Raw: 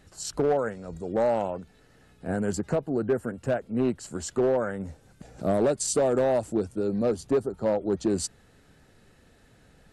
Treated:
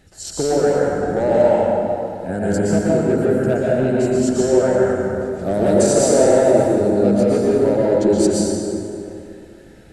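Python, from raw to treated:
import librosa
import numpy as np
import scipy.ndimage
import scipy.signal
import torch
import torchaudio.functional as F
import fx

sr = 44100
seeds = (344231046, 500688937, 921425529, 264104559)

y = fx.peak_eq(x, sr, hz=1100.0, db=-12.0, octaves=0.23)
y = fx.rev_plate(y, sr, seeds[0], rt60_s=2.8, hf_ratio=0.55, predelay_ms=105, drr_db=-6.0)
y = y * 10.0 ** (3.5 / 20.0)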